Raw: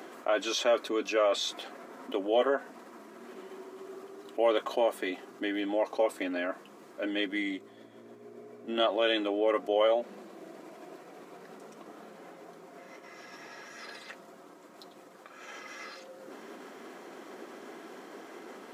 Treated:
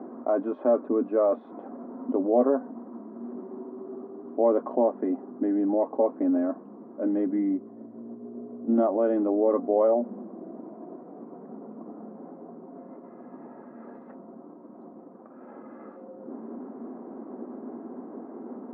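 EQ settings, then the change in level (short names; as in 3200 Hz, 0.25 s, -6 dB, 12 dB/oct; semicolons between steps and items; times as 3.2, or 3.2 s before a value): LPF 1000 Hz 24 dB/oct; bell 240 Hz +14 dB 0.54 oct; +3.0 dB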